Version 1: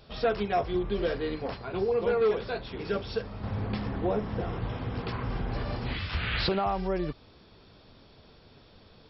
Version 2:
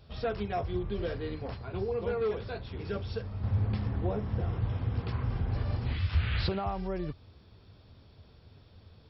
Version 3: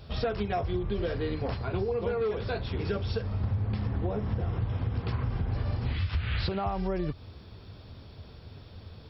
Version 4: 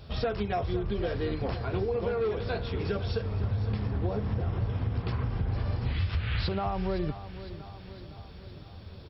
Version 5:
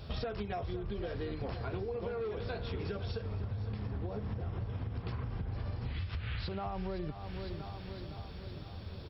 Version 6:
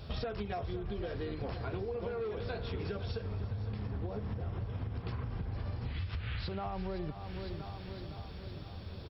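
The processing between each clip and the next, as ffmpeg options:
ffmpeg -i in.wav -af "equalizer=frequency=85:width=1.1:gain=14.5,volume=-6.5dB" out.wav
ffmpeg -i in.wav -af "acompressor=threshold=-35dB:ratio=6,volume=8.5dB" out.wav
ffmpeg -i in.wav -af "aecho=1:1:510|1020|1530|2040|2550|3060:0.211|0.125|0.0736|0.0434|0.0256|0.0151" out.wav
ffmpeg -i in.wav -af "acompressor=threshold=-35dB:ratio=10,volume=1dB" out.wav
ffmpeg -i in.wav -af "aecho=1:1:354:0.126" out.wav

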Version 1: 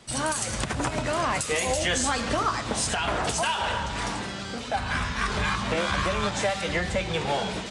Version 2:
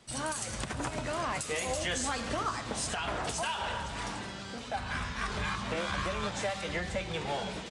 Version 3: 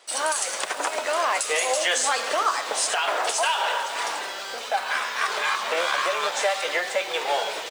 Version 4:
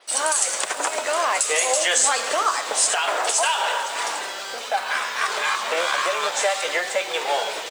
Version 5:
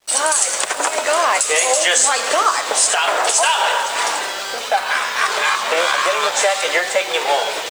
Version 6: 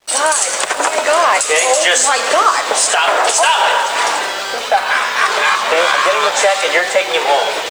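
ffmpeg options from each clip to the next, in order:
ffmpeg -i in.wav -af "aecho=1:1:509:0.15,volume=-7.5dB" out.wav
ffmpeg -i in.wav -filter_complex "[0:a]highpass=frequency=460:width=0.5412,highpass=frequency=460:width=1.3066,asplit=2[link_01][link_02];[link_02]acrusher=bits=7:mix=0:aa=0.000001,volume=-7dB[link_03];[link_01][link_03]amix=inputs=2:normalize=0,volume=7.5dB" out.wav
ffmpeg -i in.wav -af "adynamicequalizer=threshold=0.00794:dfrequency=7700:dqfactor=2.1:tfrequency=7700:tqfactor=2.1:attack=5:release=100:ratio=0.375:range=3.5:mode=boostabove:tftype=bell,volume=1.5dB" out.wav
ffmpeg -i in.wav -filter_complex "[0:a]asplit=2[link_01][link_02];[link_02]alimiter=limit=-13.5dB:level=0:latency=1:release=335,volume=2.5dB[link_03];[link_01][link_03]amix=inputs=2:normalize=0,aeval=exprs='sgn(val(0))*max(abs(val(0))-0.00668,0)':channel_layout=same" out.wav
ffmpeg -i in.wav -filter_complex "[0:a]highshelf=frequency=5300:gain=-6,asplit=2[link_01][link_02];[link_02]acontrast=67,volume=-1.5dB[link_03];[link_01][link_03]amix=inputs=2:normalize=0,volume=-3.5dB" out.wav

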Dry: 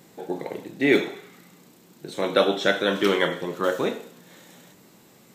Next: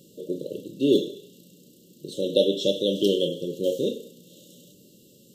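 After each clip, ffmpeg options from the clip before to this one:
ffmpeg -i in.wav -af "afftfilt=real='re*(1-between(b*sr/4096,610,2700))':imag='im*(1-between(b*sr/4096,610,2700))':win_size=4096:overlap=0.75" out.wav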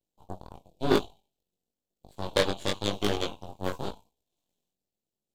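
ffmpeg -i in.wav -af "aeval=exprs='0.531*(cos(1*acos(clip(val(0)/0.531,-1,1)))-cos(1*PI/2))+0.266*(cos(2*acos(clip(val(0)/0.531,-1,1)))-cos(2*PI/2))+0.075*(cos(7*acos(clip(val(0)/0.531,-1,1)))-cos(7*PI/2))+0.0668*(cos(8*acos(clip(val(0)/0.531,-1,1)))-cos(8*PI/2))':channel_layout=same,flanger=delay=19:depth=2.6:speed=0.97" out.wav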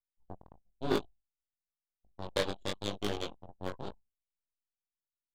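ffmpeg -i in.wav -af "anlmdn=1,volume=-7dB" out.wav

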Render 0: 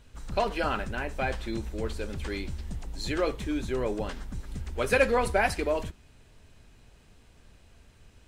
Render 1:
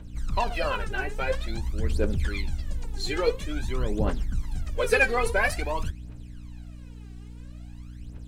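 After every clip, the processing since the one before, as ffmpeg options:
ffmpeg -i in.wav -af "aphaser=in_gain=1:out_gain=1:delay=2.7:decay=0.78:speed=0.49:type=triangular,aeval=exprs='val(0)+0.0112*(sin(2*PI*60*n/s)+sin(2*PI*2*60*n/s)/2+sin(2*PI*3*60*n/s)/3+sin(2*PI*4*60*n/s)/4+sin(2*PI*5*60*n/s)/5)':channel_layout=same,volume=-1.5dB" out.wav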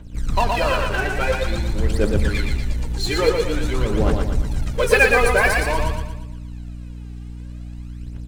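ffmpeg -i in.wav -filter_complex "[0:a]asplit=2[link_01][link_02];[link_02]acrusher=bits=4:mix=0:aa=0.5,volume=-5.5dB[link_03];[link_01][link_03]amix=inputs=2:normalize=0,aecho=1:1:117|234|351|468|585|702:0.631|0.284|0.128|0.0575|0.0259|0.0116,volume=2.5dB" out.wav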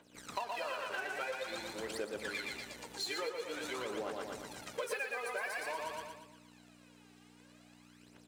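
ffmpeg -i in.wav -af "highpass=480,acompressor=threshold=-28dB:ratio=10,volume=-7.5dB" out.wav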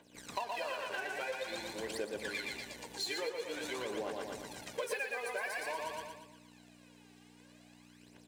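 ffmpeg -i in.wav -af "bandreject=frequency=1300:width=5.1,volume=1dB" out.wav

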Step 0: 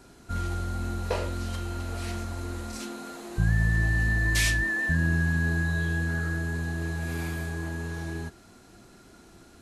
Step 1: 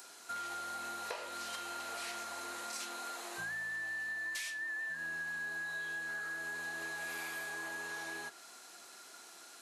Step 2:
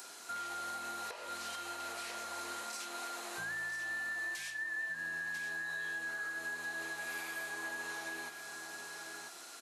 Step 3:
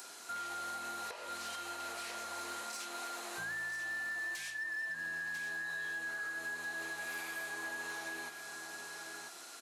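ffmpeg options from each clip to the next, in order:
ffmpeg -i in.wav -filter_complex "[0:a]acrossover=split=3700[link_01][link_02];[link_02]acompressor=mode=upward:threshold=-52dB:ratio=2.5[link_03];[link_01][link_03]amix=inputs=2:normalize=0,highpass=780,acompressor=threshold=-40dB:ratio=12,volume=2dB" out.wav
ffmpeg -i in.wav -af "aecho=1:1:992:0.335,alimiter=level_in=12dB:limit=-24dB:level=0:latency=1:release=324,volume=-12dB,volume=3.5dB" out.wav
ffmpeg -i in.wav -af "asoftclip=type=hard:threshold=-35.5dB" out.wav

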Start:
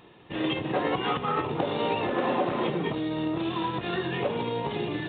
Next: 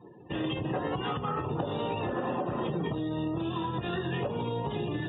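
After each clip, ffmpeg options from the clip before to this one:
ffmpeg -i in.wav -filter_complex "[0:a]equalizer=frequency=2200:width=8:gain=-8,acrossover=split=140[link_01][link_02];[link_02]acompressor=threshold=-40dB:ratio=2.5[link_03];[link_01][link_03]amix=inputs=2:normalize=0,afftdn=noise_reduction=31:noise_floor=-50,volume=5dB" out.wav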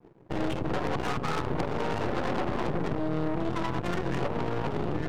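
ffmpeg -i in.wav -af "adynamicsmooth=sensitivity=5:basefreq=520,aeval=exprs='0.126*(cos(1*acos(clip(val(0)/0.126,-1,1)))-cos(1*PI/2))+0.0282*(cos(8*acos(clip(val(0)/0.126,-1,1)))-cos(8*PI/2))':channel_layout=same,aeval=exprs='sgn(val(0))*max(abs(val(0))-0.00119,0)':channel_layout=same" out.wav

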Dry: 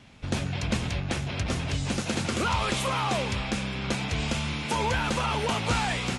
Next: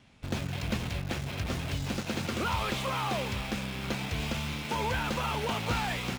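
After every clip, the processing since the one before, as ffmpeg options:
ffmpeg -i in.wav -filter_complex "[0:a]acrossover=split=5800[link_01][link_02];[link_02]acompressor=threshold=-49dB:ratio=4:attack=1:release=60[link_03];[link_01][link_03]amix=inputs=2:normalize=0,asplit=2[link_04][link_05];[link_05]acrusher=bits=4:mix=0:aa=0.000001,volume=-8dB[link_06];[link_04][link_06]amix=inputs=2:normalize=0,volume=-7dB" out.wav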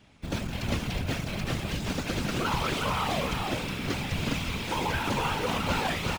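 ffmpeg -i in.wav -af "aecho=1:1:364:0.562,afftfilt=real='hypot(re,im)*cos(2*PI*random(0))':imag='hypot(re,im)*sin(2*PI*random(1))':win_size=512:overlap=0.75,volume=7.5dB" out.wav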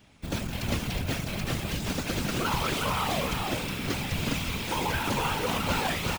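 ffmpeg -i in.wav -af "highshelf=frequency=9400:gain=10" out.wav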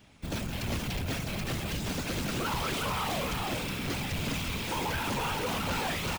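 ffmpeg -i in.wav -af "asoftclip=type=tanh:threshold=-26.5dB" out.wav

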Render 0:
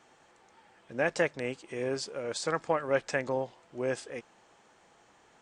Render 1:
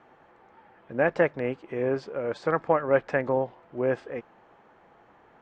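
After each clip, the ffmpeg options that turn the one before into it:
ffmpeg -i in.wav -af "lowpass=1700,volume=6dB" out.wav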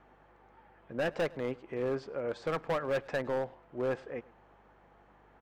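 ffmpeg -i in.wav -filter_complex "[0:a]volume=21.5dB,asoftclip=hard,volume=-21.5dB,asplit=2[link_01][link_02];[link_02]adelay=105,volume=-23dB,highshelf=frequency=4000:gain=-2.36[link_03];[link_01][link_03]amix=inputs=2:normalize=0,aeval=exprs='val(0)+0.000794*(sin(2*PI*50*n/s)+sin(2*PI*2*50*n/s)/2+sin(2*PI*3*50*n/s)/3+sin(2*PI*4*50*n/s)/4+sin(2*PI*5*50*n/s)/5)':channel_layout=same,volume=-5dB" out.wav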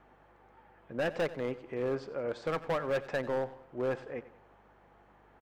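ffmpeg -i in.wav -af "aecho=1:1:91|182|273|364:0.141|0.0607|0.0261|0.0112" out.wav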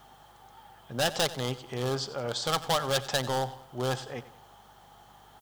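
ffmpeg -i in.wav -af "equalizer=frequency=125:width_type=o:width=0.33:gain=9,equalizer=frequency=315:width_type=o:width=0.33:gain=-6,equalizer=frequency=500:width_type=o:width=0.33:gain=-5,equalizer=frequency=800:width_type=o:width=0.33:gain=8,equalizer=frequency=1250:width_type=o:width=0.33:gain=4,equalizer=frequency=3150:width_type=o:width=0.33:gain=9,aexciter=amount=5.9:drive=7.9:freq=3600,volume=3dB" out.wav

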